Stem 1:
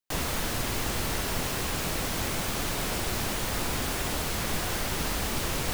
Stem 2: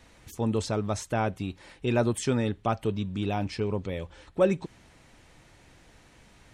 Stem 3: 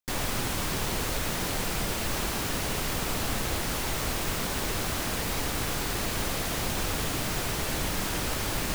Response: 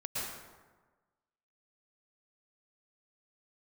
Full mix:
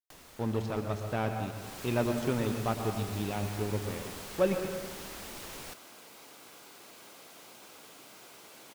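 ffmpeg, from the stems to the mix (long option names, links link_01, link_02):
-filter_complex "[0:a]acrossover=split=210|3600[link_01][link_02][link_03];[link_01]acompressor=threshold=-52dB:ratio=4[link_04];[link_02]acompressor=threshold=-44dB:ratio=4[link_05];[link_03]acompressor=threshold=-44dB:ratio=4[link_06];[link_04][link_05][link_06]amix=inputs=3:normalize=0,volume=-3.5dB,afade=type=in:start_time=1.55:duration=0.27:silence=0.334965[link_07];[1:a]aeval=exprs='sgn(val(0))*max(abs(val(0))-0.015,0)':channel_layout=same,lowpass=4700,volume=-5.5dB,asplit=3[link_08][link_09][link_10];[link_09]volume=-6dB[link_11];[2:a]highpass=300,bandreject=frequency=1800:width=9.5,adelay=850,volume=-20dB[link_12];[link_10]apad=whole_len=423043[link_13];[link_12][link_13]sidechaincompress=threshold=-38dB:ratio=8:attack=16:release=403[link_14];[3:a]atrim=start_sample=2205[link_15];[link_11][link_15]afir=irnorm=-1:irlink=0[link_16];[link_07][link_08][link_14][link_16]amix=inputs=4:normalize=0"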